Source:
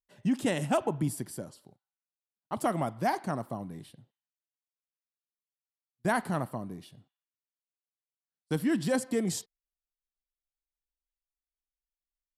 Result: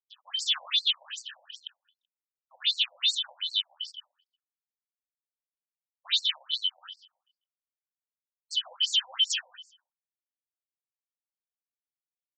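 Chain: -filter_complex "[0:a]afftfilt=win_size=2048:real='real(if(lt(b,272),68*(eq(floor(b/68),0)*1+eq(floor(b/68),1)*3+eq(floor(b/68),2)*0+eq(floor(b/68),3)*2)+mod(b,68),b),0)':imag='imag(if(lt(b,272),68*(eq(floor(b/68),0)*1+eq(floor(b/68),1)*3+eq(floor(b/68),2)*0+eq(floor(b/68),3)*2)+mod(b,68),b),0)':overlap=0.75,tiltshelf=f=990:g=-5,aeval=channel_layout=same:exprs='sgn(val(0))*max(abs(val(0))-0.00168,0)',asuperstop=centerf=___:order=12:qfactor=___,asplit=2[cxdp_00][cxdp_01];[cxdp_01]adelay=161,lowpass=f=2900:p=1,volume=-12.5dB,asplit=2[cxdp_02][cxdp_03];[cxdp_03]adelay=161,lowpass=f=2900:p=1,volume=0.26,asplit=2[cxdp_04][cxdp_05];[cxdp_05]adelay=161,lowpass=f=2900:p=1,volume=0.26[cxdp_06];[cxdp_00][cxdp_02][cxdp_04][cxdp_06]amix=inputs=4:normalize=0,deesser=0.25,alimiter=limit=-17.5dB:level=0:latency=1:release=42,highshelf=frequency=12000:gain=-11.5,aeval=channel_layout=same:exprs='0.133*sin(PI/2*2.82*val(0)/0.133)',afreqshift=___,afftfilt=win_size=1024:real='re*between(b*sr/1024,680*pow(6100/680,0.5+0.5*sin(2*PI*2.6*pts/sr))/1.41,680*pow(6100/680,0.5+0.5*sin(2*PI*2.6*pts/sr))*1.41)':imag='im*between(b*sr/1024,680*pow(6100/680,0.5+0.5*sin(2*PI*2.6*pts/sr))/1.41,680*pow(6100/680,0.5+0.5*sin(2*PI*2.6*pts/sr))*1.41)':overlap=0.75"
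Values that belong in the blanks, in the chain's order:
2200, 3.8, -72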